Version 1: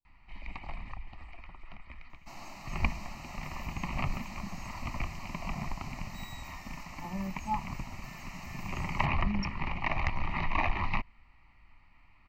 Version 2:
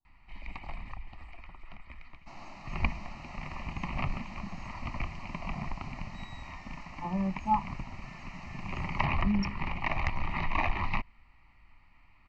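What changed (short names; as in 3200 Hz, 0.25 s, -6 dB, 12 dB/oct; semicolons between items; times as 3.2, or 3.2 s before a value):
speech +6.0 dB; second sound: add air absorption 130 m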